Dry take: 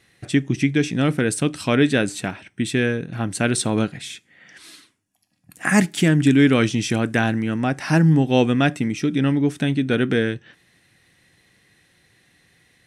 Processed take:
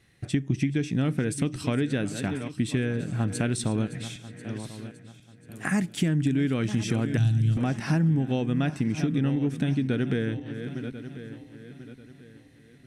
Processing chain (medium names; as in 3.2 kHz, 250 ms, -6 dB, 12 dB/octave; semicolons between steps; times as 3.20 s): backward echo that repeats 520 ms, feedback 56%, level -14 dB; 7.17–7.57 s: graphic EQ 125/250/500/1000/2000/4000/8000 Hz +12/-11/-10/-11/-10/+6/+5 dB; compression 6:1, threshold -20 dBFS, peak gain reduction 9.5 dB; bass shelf 230 Hz +10.5 dB; trim -6.5 dB